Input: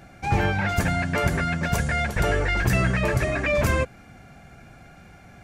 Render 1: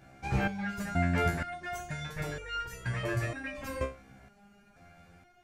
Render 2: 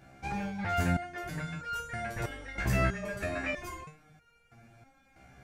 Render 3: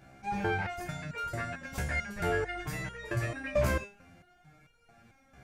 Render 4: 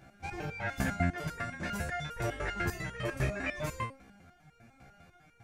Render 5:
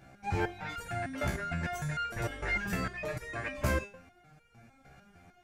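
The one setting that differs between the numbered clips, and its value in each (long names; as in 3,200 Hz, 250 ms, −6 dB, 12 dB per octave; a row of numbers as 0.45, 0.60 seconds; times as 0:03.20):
step-sequenced resonator, speed: 2.1, 3.1, 4.5, 10, 6.6 Hertz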